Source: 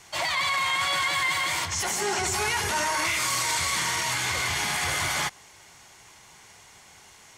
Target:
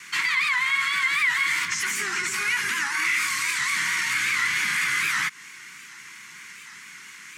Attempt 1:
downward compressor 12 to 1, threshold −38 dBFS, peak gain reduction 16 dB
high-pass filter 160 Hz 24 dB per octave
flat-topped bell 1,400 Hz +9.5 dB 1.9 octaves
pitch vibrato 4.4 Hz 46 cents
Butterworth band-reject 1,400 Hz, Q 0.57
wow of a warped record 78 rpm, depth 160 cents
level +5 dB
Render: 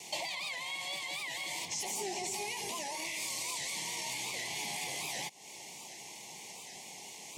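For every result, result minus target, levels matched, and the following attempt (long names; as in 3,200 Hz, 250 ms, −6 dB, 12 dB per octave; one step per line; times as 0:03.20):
500 Hz band +19.0 dB; downward compressor: peak gain reduction +7 dB
downward compressor 12 to 1, threshold −38 dBFS, peak gain reduction 16 dB
high-pass filter 160 Hz 24 dB per octave
flat-topped bell 1,400 Hz +9.5 dB 1.9 octaves
pitch vibrato 4.4 Hz 46 cents
Butterworth band-reject 670 Hz, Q 0.57
wow of a warped record 78 rpm, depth 160 cents
level +5 dB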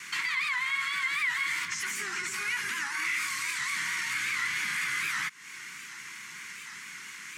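downward compressor: peak gain reduction +7 dB
downward compressor 12 to 1, threshold −30.5 dBFS, peak gain reduction 9 dB
high-pass filter 160 Hz 24 dB per octave
flat-topped bell 1,400 Hz +9.5 dB 1.9 octaves
pitch vibrato 4.4 Hz 46 cents
Butterworth band-reject 670 Hz, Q 0.57
wow of a warped record 78 rpm, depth 160 cents
level +5 dB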